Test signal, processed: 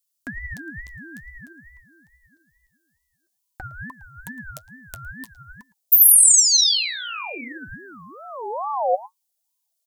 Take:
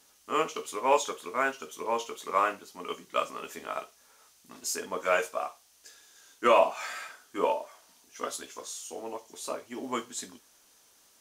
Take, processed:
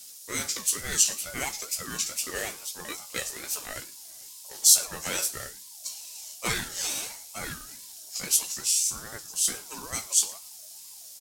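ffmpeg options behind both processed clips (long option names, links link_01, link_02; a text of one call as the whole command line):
ffmpeg -i in.wav -filter_complex "[0:a]asubboost=boost=10.5:cutoff=95,acrossover=split=200|1500[link_01][link_02][link_03];[link_02]acompressor=threshold=-38dB:ratio=6[link_04];[link_01][link_04][link_03]amix=inputs=3:normalize=0,flanger=delay=2.4:depth=8.9:regen=46:speed=0.51:shape=sinusoidal,asplit=2[link_05][link_06];[link_06]adelay=110.8,volume=-20dB,highshelf=frequency=4000:gain=-2.49[link_07];[link_05][link_07]amix=inputs=2:normalize=0,aexciter=amount=5.7:drive=6.1:freq=3800,aeval=exprs='val(0)*sin(2*PI*820*n/s+820*0.25/2.3*sin(2*PI*2.3*n/s))':channel_layout=same,volume=6.5dB" out.wav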